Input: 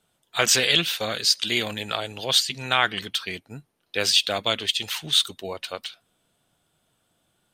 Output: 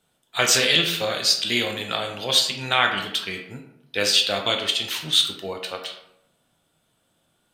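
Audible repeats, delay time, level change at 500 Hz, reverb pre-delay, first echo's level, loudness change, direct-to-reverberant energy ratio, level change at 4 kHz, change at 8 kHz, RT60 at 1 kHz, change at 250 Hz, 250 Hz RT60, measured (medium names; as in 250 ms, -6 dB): no echo, no echo, +2.5 dB, 13 ms, no echo, +1.5 dB, 3.0 dB, +1.5 dB, +1.0 dB, 0.75 s, +2.0 dB, 0.90 s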